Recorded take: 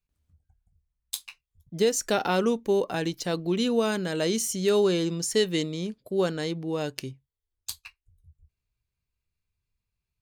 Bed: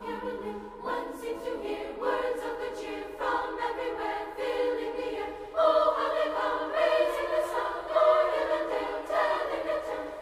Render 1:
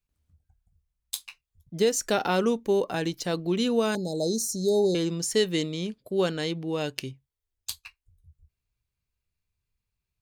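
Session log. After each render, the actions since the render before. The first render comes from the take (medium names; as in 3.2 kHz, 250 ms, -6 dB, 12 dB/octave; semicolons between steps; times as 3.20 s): 3.95–4.95 s: Chebyshev band-stop 850–3900 Hz, order 5; 5.62–7.75 s: dynamic bell 2.9 kHz, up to +5 dB, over -51 dBFS, Q 1.6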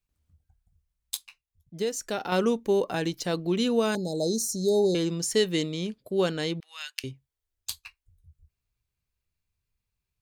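1.17–2.32 s: gain -6 dB; 6.60–7.04 s: inverse Chebyshev high-pass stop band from 230 Hz, stop band 80 dB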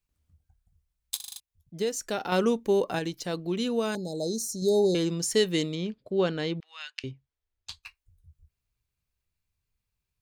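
1.16 s: stutter in place 0.04 s, 6 plays; 2.99–4.62 s: gain -3.5 dB; 5.75–7.83 s: distance through air 130 m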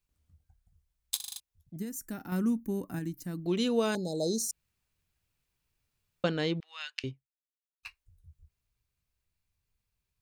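1.76–3.46 s: FFT filter 300 Hz 0 dB, 450 Hz -20 dB, 1.2 kHz -13 dB, 1.8 kHz -10 dB, 3.4 kHz -23 dB, 5.9 kHz -12 dB, 14 kHz +7 dB; 4.51–6.24 s: room tone; 7.09–7.83 s: fade out exponential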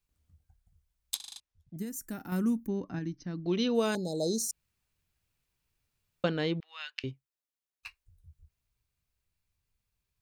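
1.14–1.77 s: distance through air 64 m; 2.67–3.75 s: brick-wall FIR low-pass 6.3 kHz; 6.25–7.09 s: peaking EQ 7.9 kHz -9.5 dB 1 oct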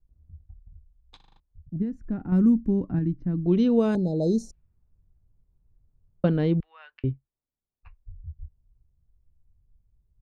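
level-controlled noise filter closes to 910 Hz, open at -25.5 dBFS; tilt EQ -4.5 dB/octave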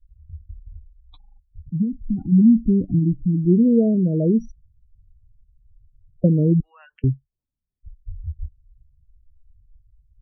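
spectral gate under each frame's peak -15 dB strong; bass shelf 280 Hz +10 dB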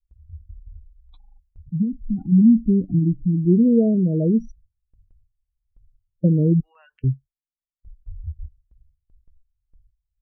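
gate with hold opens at -44 dBFS; harmonic-percussive split percussive -7 dB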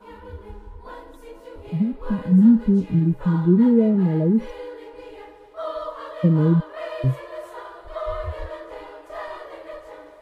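add bed -7 dB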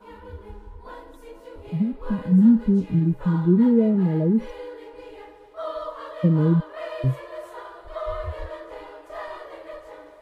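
trim -1.5 dB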